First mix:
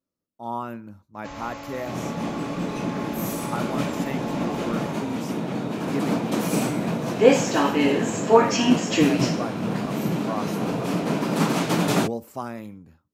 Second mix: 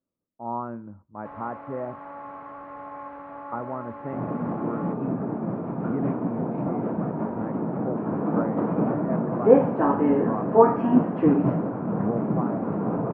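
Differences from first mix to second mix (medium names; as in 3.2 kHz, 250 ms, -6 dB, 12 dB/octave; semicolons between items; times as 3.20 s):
first sound: add tilt EQ +4 dB/octave; second sound: entry +2.25 s; master: add low-pass 1.3 kHz 24 dB/octave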